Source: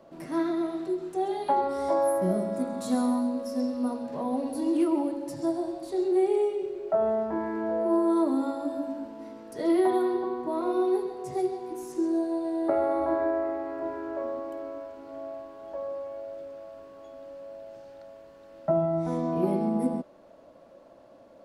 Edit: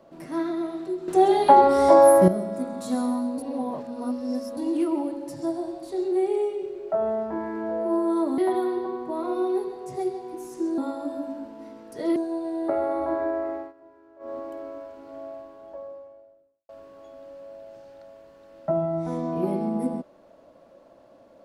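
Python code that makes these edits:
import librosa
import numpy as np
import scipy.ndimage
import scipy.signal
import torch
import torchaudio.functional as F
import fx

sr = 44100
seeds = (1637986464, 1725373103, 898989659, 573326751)

y = fx.studio_fade_out(x, sr, start_s=15.22, length_s=1.47)
y = fx.edit(y, sr, fx.clip_gain(start_s=1.08, length_s=1.2, db=11.0),
    fx.reverse_span(start_s=3.38, length_s=1.19),
    fx.move(start_s=8.38, length_s=1.38, to_s=12.16),
    fx.fade_down_up(start_s=13.52, length_s=0.88, db=-19.0, fade_s=0.21, curve='qsin'), tone=tone)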